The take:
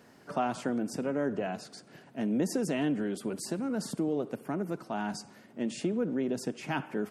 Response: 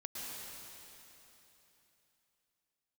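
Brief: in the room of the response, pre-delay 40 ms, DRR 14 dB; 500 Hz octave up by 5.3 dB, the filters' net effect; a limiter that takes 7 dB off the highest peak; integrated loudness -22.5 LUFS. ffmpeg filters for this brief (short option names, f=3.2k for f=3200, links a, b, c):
-filter_complex "[0:a]equalizer=f=500:t=o:g=6.5,alimiter=limit=-21dB:level=0:latency=1,asplit=2[a][b];[1:a]atrim=start_sample=2205,adelay=40[c];[b][c]afir=irnorm=-1:irlink=0,volume=-14dB[d];[a][d]amix=inputs=2:normalize=0,volume=9.5dB"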